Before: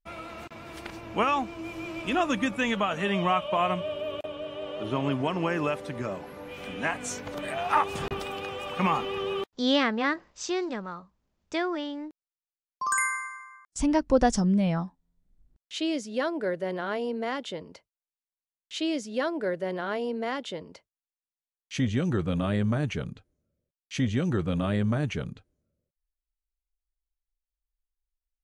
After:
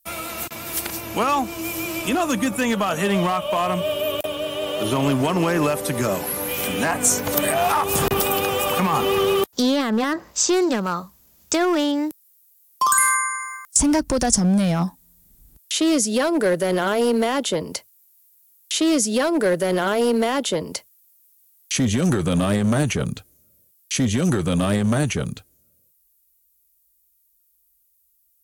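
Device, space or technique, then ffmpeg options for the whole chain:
FM broadcast chain: -filter_complex "[0:a]highpass=41,dynaudnorm=f=640:g=21:m=10.5dB,acrossover=split=170|1500[a][b][c];[a]acompressor=threshold=-31dB:ratio=4[d];[b]acompressor=threshold=-22dB:ratio=4[e];[c]acompressor=threshold=-42dB:ratio=4[f];[d][e][f]amix=inputs=3:normalize=0,aemphasis=mode=production:type=50fm,alimiter=limit=-19dB:level=0:latency=1:release=38,asoftclip=type=hard:threshold=-22dB,lowpass=f=15k:w=0.5412,lowpass=f=15k:w=1.3066,aemphasis=mode=production:type=50fm,volume=8dB"

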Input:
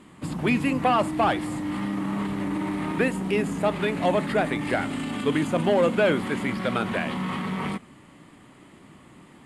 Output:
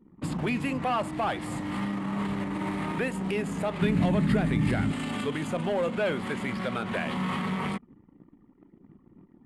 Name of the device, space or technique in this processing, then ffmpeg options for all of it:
soft clipper into limiter: -filter_complex "[0:a]asoftclip=type=tanh:threshold=-12.5dB,alimiter=limit=-20dB:level=0:latency=1:release=223,asplit=3[a][b][c];[a]afade=t=out:st=3.81:d=0.02[d];[b]asubboost=boost=6.5:cutoff=240,afade=t=in:st=3.81:d=0.02,afade=t=out:st=4.91:d=0.02[e];[c]afade=t=in:st=4.91:d=0.02[f];[d][e][f]amix=inputs=3:normalize=0,anlmdn=0.0631,adynamicequalizer=threshold=0.00708:dfrequency=300:dqfactor=4.1:tfrequency=300:tqfactor=4.1:attack=5:release=100:ratio=0.375:range=3:mode=cutabove:tftype=bell"

